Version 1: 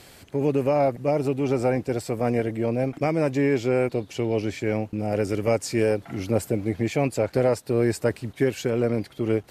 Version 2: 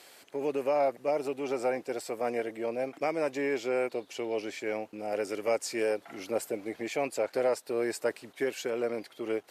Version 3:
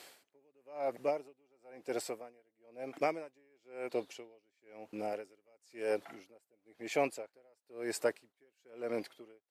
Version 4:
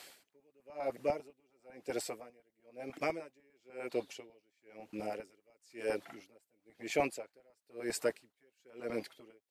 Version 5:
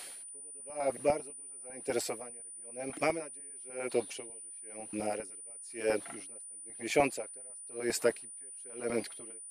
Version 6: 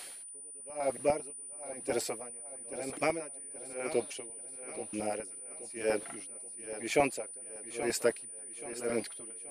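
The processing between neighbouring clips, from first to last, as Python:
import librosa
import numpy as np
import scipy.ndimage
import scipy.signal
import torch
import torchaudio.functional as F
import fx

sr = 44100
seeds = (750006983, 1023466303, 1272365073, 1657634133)

y1 = scipy.signal.sosfilt(scipy.signal.butter(2, 430.0, 'highpass', fs=sr, output='sos'), x)
y1 = F.gain(torch.from_numpy(y1), -4.0).numpy()
y2 = y1 * 10.0 ** (-39 * (0.5 - 0.5 * np.cos(2.0 * np.pi * 1.0 * np.arange(len(y1)) / sr)) / 20.0)
y3 = fx.filter_lfo_notch(y2, sr, shape='saw_up', hz=10.0, low_hz=270.0, high_hz=1600.0, q=1.2)
y3 = F.gain(torch.from_numpy(y3), 1.5).numpy()
y4 = y3 + 10.0 ** (-49.0 / 20.0) * np.sin(2.0 * np.pi * 9400.0 * np.arange(len(y3)) / sr)
y4 = F.gain(torch.from_numpy(y4), 4.5).numpy()
y5 = fx.echo_feedback(y4, sr, ms=828, feedback_pct=37, wet_db=-12.5)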